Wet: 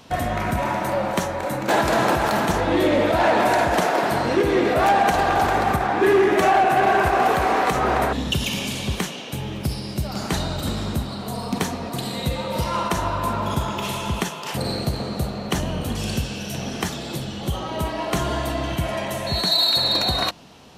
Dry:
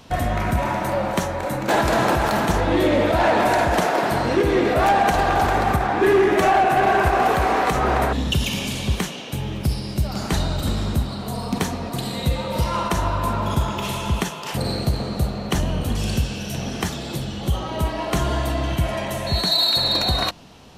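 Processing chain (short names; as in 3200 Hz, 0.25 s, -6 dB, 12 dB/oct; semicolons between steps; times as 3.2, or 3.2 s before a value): low shelf 67 Hz -11.5 dB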